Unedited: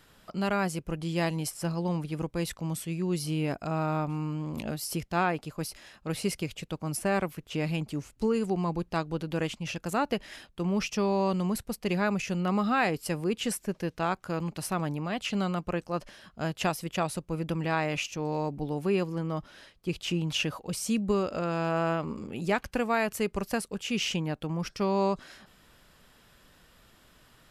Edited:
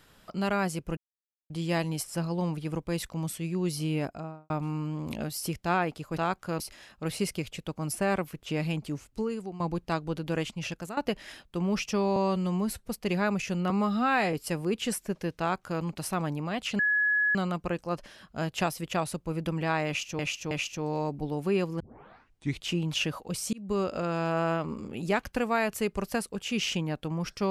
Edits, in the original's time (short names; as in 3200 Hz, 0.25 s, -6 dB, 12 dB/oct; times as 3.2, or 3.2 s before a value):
0.97 insert silence 0.53 s
3.43–3.97 studio fade out
7.91–8.64 fade out, to -13 dB
9.76–10.01 fade out, to -16.5 dB
11.2–11.68 stretch 1.5×
12.5–12.92 stretch 1.5×
13.98–14.41 copy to 5.64
15.38 add tone 1690 Hz -22 dBFS 0.56 s
17.9–18.22 loop, 3 plays
19.19 tape start 0.85 s
20.92–21.21 fade in